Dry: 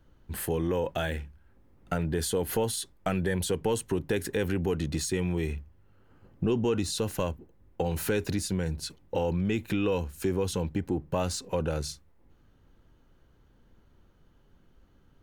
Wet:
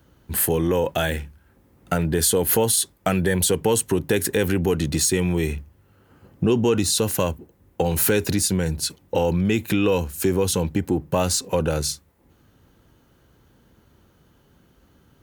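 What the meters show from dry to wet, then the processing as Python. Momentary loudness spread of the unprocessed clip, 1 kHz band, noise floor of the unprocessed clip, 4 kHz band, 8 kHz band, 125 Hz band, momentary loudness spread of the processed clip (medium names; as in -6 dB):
6 LU, +7.5 dB, -62 dBFS, +10.0 dB, +13.5 dB, +7.0 dB, 7 LU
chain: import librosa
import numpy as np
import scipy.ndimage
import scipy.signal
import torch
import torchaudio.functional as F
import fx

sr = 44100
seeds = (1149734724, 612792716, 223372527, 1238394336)

y = scipy.signal.sosfilt(scipy.signal.butter(2, 68.0, 'highpass', fs=sr, output='sos'), x)
y = fx.high_shelf(y, sr, hz=7000.0, db=10.5)
y = F.gain(torch.from_numpy(y), 7.5).numpy()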